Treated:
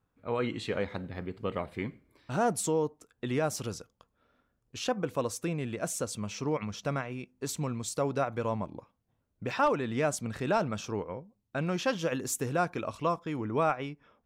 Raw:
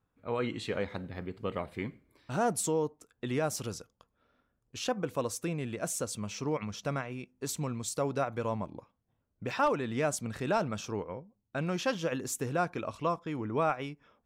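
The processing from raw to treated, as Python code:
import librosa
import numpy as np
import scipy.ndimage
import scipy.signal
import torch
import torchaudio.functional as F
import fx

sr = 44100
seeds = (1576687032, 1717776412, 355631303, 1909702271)

y = fx.high_shelf(x, sr, hz=6900.0, db=fx.steps((0.0, -3.5), (11.98, 2.5), (13.71, -11.0)))
y = F.gain(torch.from_numpy(y), 1.5).numpy()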